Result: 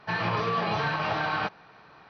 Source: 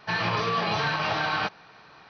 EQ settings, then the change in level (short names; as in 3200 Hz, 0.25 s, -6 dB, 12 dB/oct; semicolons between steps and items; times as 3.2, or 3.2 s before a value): high shelf 3300 Hz -10.5 dB; 0.0 dB